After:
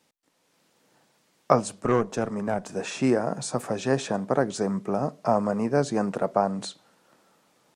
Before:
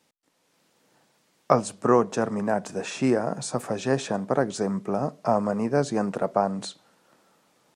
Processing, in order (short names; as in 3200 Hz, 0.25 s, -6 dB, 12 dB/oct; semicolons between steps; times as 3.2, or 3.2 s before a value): 1.8–2.71 tube stage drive 13 dB, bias 0.55